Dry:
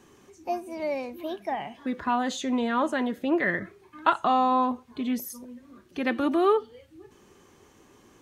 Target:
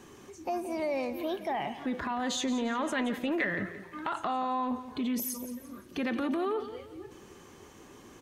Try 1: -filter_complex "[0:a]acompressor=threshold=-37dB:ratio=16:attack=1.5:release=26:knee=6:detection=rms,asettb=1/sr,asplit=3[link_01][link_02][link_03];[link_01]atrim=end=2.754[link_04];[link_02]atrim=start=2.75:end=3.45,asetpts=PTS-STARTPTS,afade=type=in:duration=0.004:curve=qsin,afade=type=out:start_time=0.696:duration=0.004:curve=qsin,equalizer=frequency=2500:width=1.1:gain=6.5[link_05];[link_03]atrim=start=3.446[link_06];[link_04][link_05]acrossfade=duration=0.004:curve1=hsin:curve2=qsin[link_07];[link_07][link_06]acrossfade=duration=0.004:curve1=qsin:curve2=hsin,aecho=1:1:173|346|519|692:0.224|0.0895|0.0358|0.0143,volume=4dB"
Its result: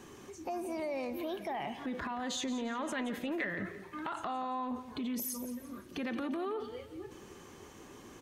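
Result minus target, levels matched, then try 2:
downward compressor: peak gain reduction +5.5 dB
-filter_complex "[0:a]acompressor=threshold=-31dB:ratio=16:attack=1.5:release=26:knee=6:detection=rms,asettb=1/sr,asplit=3[link_01][link_02][link_03];[link_01]atrim=end=2.754[link_04];[link_02]atrim=start=2.75:end=3.45,asetpts=PTS-STARTPTS,afade=type=in:duration=0.004:curve=qsin,afade=type=out:start_time=0.696:duration=0.004:curve=qsin,equalizer=frequency=2500:width=1.1:gain=6.5[link_05];[link_03]atrim=start=3.446[link_06];[link_04][link_05]acrossfade=duration=0.004:curve1=hsin:curve2=qsin[link_07];[link_07][link_06]acrossfade=duration=0.004:curve1=qsin:curve2=hsin,aecho=1:1:173|346|519|692:0.224|0.0895|0.0358|0.0143,volume=4dB"

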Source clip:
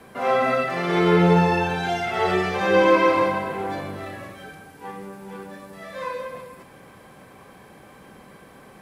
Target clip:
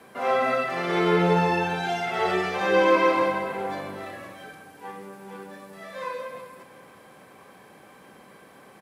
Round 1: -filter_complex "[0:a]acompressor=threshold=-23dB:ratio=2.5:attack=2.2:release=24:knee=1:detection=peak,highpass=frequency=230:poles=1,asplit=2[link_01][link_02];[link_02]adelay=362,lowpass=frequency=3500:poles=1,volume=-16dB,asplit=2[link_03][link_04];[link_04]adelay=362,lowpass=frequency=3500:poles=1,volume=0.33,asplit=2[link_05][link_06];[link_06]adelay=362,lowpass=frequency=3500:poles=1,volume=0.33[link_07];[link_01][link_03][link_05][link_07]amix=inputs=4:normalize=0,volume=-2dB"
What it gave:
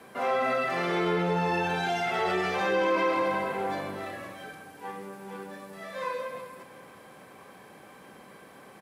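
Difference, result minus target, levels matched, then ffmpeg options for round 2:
downward compressor: peak gain reduction +8 dB
-filter_complex "[0:a]highpass=frequency=230:poles=1,asplit=2[link_01][link_02];[link_02]adelay=362,lowpass=frequency=3500:poles=1,volume=-16dB,asplit=2[link_03][link_04];[link_04]adelay=362,lowpass=frequency=3500:poles=1,volume=0.33,asplit=2[link_05][link_06];[link_06]adelay=362,lowpass=frequency=3500:poles=1,volume=0.33[link_07];[link_01][link_03][link_05][link_07]amix=inputs=4:normalize=0,volume=-2dB"

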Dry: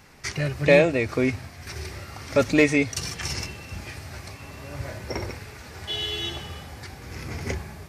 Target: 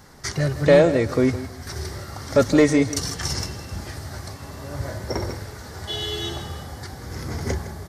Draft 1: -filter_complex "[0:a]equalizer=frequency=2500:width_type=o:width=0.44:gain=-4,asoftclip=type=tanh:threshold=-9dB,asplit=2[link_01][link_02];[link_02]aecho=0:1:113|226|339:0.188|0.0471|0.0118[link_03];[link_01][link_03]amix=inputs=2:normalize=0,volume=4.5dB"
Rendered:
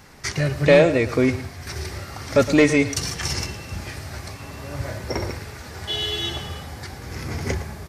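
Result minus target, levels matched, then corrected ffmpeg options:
echo 48 ms early; 2,000 Hz band +3.5 dB
-filter_complex "[0:a]equalizer=frequency=2500:width_type=o:width=0.44:gain=-15,asoftclip=type=tanh:threshold=-9dB,asplit=2[link_01][link_02];[link_02]aecho=0:1:161|322|483:0.188|0.0471|0.0118[link_03];[link_01][link_03]amix=inputs=2:normalize=0,volume=4.5dB"

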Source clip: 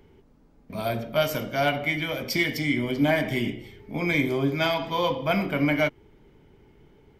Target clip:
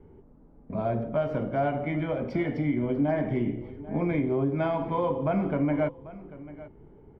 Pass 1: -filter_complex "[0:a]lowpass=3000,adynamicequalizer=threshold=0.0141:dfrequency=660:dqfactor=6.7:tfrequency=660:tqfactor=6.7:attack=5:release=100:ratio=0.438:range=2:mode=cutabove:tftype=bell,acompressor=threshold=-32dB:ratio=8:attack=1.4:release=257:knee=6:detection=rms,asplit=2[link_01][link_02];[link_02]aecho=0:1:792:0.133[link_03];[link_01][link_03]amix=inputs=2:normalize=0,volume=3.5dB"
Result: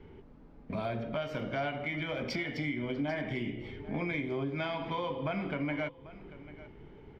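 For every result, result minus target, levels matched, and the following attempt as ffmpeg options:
4,000 Hz band +15.5 dB; downward compressor: peak gain reduction +9 dB
-filter_complex "[0:a]lowpass=960,adynamicequalizer=threshold=0.0141:dfrequency=660:dqfactor=6.7:tfrequency=660:tqfactor=6.7:attack=5:release=100:ratio=0.438:range=2:mode=cutabove:tftype=bell,acompressor=threshold=-32dB:ratio=8:attack=1.4:release=257:knee=6:detection=rms,asplit=2[link_01][link_02];[link_02]aecho=0:1:792:0.133[link_03];[link_01][link_03]amix=inputs=2:normalize=0,volume=3.5dB"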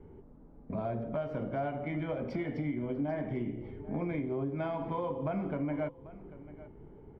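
downward compressor: peak gain reduction +8.5 dB
-filter_complex "[0:a]lowpass=960,adynamicequalizer=threshold=0.0141:dfrequency=660:dqfactor=6.7:tfrequency=660:tqfactor=6.7:attack=5:release=100:ratio=0.438:range=2:mode=cutabove:tftype=bell,acompressor=threshold=-22.5dB:ratio=8:attack=1.4:release=257:knee=6:detection=rms,asplit=2[link_01][link_02];[link_02]aecho=0:1:792:0.133[link_03];[link_01][link_03]amix=inputs=2:normalize=0,volume=3.5dB"

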